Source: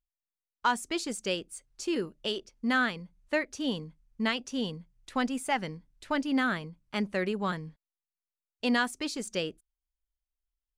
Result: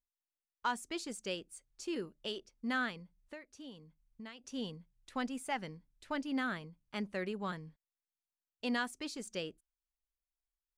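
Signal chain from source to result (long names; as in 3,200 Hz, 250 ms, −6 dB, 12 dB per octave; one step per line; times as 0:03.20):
0:03.03–0:04.44: downward compressor 2.5 to 1, threshold −44 dBFS, peak gain reduction 14.5 dB
level −8 dB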